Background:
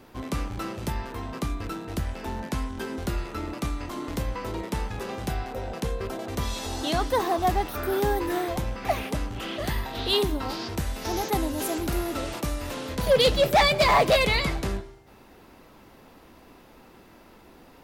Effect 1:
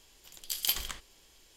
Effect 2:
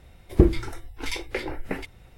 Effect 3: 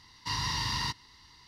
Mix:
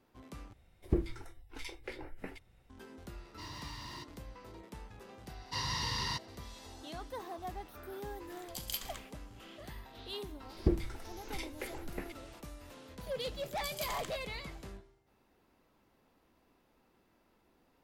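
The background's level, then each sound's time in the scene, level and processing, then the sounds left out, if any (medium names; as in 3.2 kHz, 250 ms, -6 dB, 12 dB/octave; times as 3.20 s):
background -19 dB
0.53 s: replace with 2 -14 dB
3.12 s: add 3 -14 dB + slew-rate limiter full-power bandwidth 86 Hz
5.26 s: add 3 -4 dB
8.05 s: add 1 -9.5 dB
10.27 s: add 2 -12.5 dB
13.14 s: add 1 -7 dB + peak limiter -19.5 dBFS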